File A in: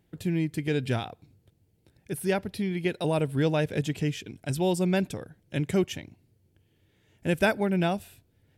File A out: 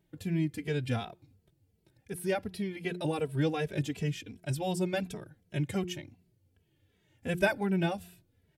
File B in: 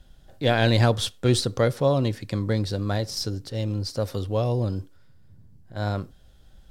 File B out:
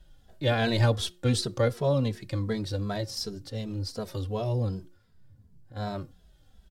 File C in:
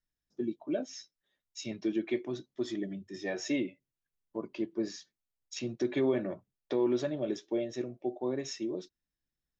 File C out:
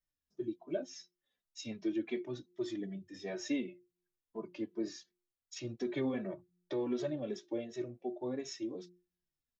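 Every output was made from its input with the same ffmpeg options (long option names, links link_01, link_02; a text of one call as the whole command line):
ffmpeg -i in.wav -filter_complex "[0:a]bandreject=frequency=178.7:width_type=h:width=4,bandreject=frequency=357.4:width_type=h:width=4,asplit=2[link_01][link_02];[link_02]adelay=2.7,afreqshift=-2.7[link_03];[link_01][link_03]amix=inputs=2:normalize=1,volume=-1.5dB" out.wav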